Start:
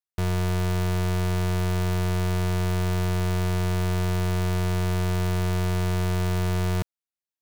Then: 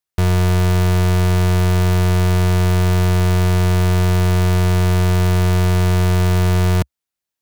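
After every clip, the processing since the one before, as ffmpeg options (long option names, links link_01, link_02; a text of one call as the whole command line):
ffmpeg -i in.wav -af "equalizer=frequency=68:width=1.8:gain=4,volume=8.5dB" out.wav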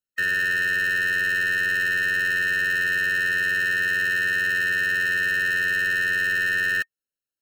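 ffmpeg -i in.wav -af "aeval=exprs='val(0)*sin(2*PI*1900*n/s)':channel_layout=same,afftfilt=real='re*eq(mod(floor(b*sr/1024/630),2),0)':imag='im*eq(mod(floor(b*sr/1024/630),2),0)':win_size=1024:overlap=0.75,volume=-2.5dB" out.wav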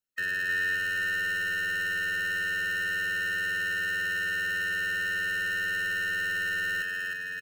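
ffmpeg -i in.wav -filter_complex "[0:a]alimiter=limit=-23dB:level=0:latency=1:release=268,asplit=2[link_01][link_02];[link_02]aecho=0:1:310|573.5|797.5|987.9|1150:0.631|0.398|0.251|0.158|0.1[link_03];[link_01][link_03]amix=inputs=2:normalize=0" out.wav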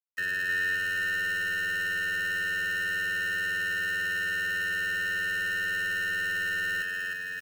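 ffmpeg -i in.wav -af "acrusher=bits=8:mix=0:aa=0.000001" out.wav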